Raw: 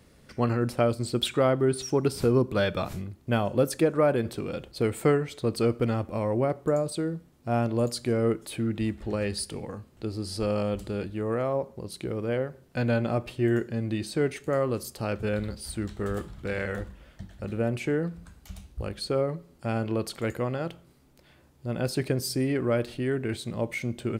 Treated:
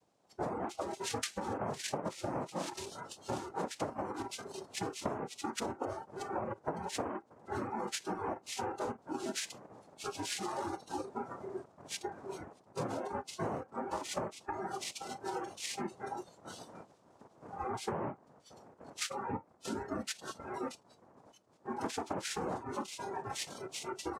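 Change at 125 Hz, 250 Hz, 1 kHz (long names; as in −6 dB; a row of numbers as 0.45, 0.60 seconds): −19.0, −13.5, −3.0 decibels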